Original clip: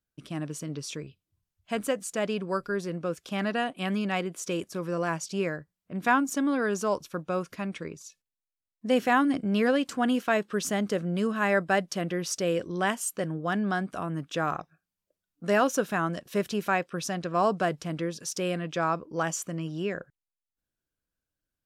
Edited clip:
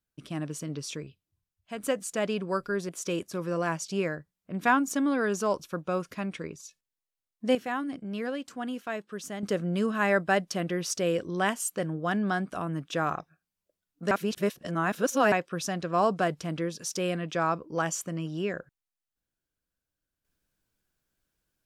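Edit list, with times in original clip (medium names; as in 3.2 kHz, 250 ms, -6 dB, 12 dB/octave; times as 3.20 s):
0.92–1.83 s: fade out linear, to -8.5 dB
2.89–4.30 s: delete
8.96–10.84 s: gain -9 dB
15.52–16.73 s: reverse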